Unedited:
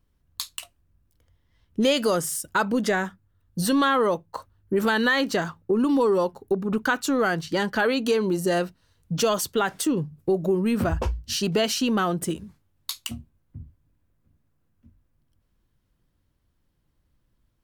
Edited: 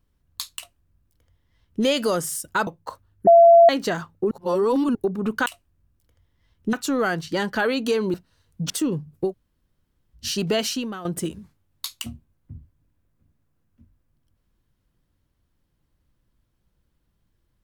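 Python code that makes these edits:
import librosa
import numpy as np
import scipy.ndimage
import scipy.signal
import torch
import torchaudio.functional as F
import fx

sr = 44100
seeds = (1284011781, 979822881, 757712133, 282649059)

y = fx.edit(x, sr, fx.duplicate(start_s=0.57, length_s=1.27, to_s=6.93),
    fx.cut(start_s=2.67, length_s=1.47),
    fx.bleep(start_s=4.74, length_s=0.42, hz=678.0, db=-7.5),
    fx.reverse_span(start_s=5.78, length_s=0.64),
    fx.cut(start_s=8.34, length_s=0.31),
    fx.cut(start_s=9.21, length_s=0.54),
    fx.room_tone_fill(start_s=10.34, length_s=0.89, crossfade_s=0.1),
    fx.fade_out_to(start_s=11.75, length_s=0.35, curve='qua', floor_db=-13.0), tone=tone)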